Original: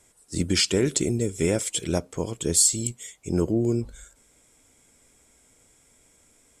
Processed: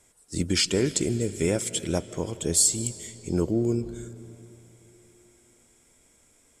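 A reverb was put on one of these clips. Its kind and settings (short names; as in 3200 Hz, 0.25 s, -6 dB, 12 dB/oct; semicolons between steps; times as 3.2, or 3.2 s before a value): digital reverb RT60 3.5 s, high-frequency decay 0.75×, pre-delay 0.115 s, DRR 15 dB; gain -1.5 dB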